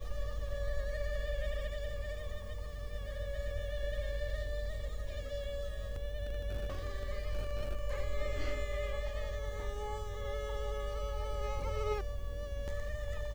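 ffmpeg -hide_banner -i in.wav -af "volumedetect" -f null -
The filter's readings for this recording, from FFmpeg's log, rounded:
mean_volume: -36.0 dB
max_volume: -20.7 dB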